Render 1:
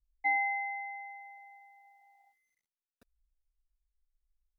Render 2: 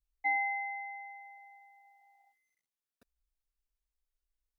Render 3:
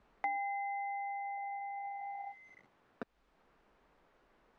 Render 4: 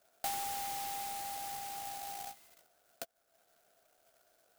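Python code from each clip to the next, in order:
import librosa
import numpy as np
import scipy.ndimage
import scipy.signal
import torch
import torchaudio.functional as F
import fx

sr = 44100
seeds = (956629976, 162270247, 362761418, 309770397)

y1 = fx.low_shelf(x, sr, hz=65.0, db=-7.5)
y1 = y1 * 10.0 ** (-1.5 / 20.0)
y2 = scipy.signal.sosfilt(scipy.signal.butter(2, 1200.0, 'lowpass', fs=sr, output='sos'), y1)
y2 = fx.band_squash(y2, sr, depth_pct=100)
y2 = y2 * 10.0 ** (6.0 / 20.0)
y3 = fx.double_bandpass(y2, sr, hz=1000.0, octaves=1.1)
y3 = fx.doubler(y3, sr, ms=15.0, db=-10.0)
y3 = fx.clock_jitter(y3, sr, seeds[0], jitter_ms=0.14)
y3 = y3 * 10.0 ** (8.0 / 20.0)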